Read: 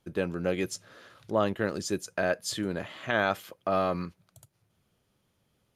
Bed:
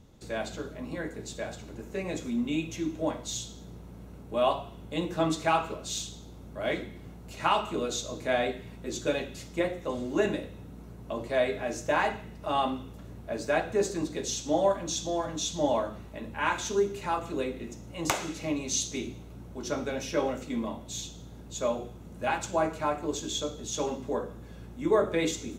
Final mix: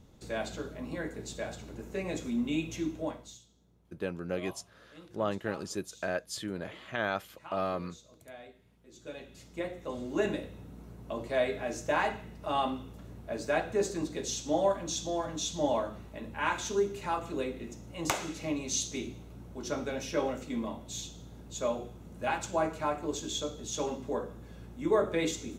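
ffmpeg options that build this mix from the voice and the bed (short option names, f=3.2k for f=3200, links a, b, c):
-filter_complex "[0:a]adelay=3850,volume=-5.5dB[a];[1:a]volume=17.5dB,afade=t=out:st=2.84:d=0.55:silence=0.1,afade=t=in:st=8.9:d=1.45:silence=0.112202[b];[a][b]amix=inputs=2:normalize=0"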